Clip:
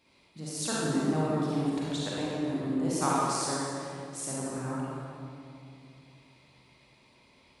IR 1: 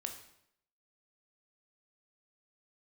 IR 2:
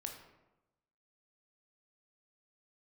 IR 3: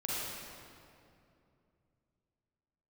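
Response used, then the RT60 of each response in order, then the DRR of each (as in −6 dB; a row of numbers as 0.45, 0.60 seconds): 3; 0.75, 1.0, 2.6 seconds; 4.0, 2.5, −7.5 decibels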